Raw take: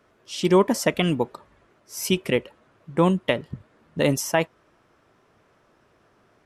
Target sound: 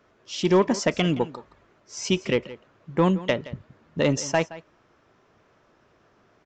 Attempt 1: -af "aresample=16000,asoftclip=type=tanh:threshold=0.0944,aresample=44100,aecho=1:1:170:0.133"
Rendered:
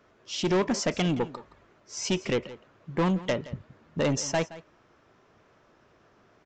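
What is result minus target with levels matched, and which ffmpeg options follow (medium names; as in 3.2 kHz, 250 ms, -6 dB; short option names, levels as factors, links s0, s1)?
saturation: distortion +11 dB
-af "aresample=16000,asoftclip=type=tanh:threshold=0.316,aresample=44100,aecho=1:1:170:0.133"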